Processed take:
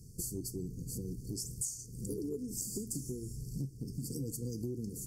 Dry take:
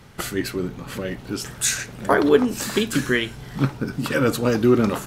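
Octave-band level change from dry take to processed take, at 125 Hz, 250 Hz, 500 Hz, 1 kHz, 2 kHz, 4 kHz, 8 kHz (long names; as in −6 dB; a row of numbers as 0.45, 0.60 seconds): −12.0 dB, −18.5 dB, −23.0 dB, below −40 dB, below −40 dB, −21.5 dB, −10.5 dB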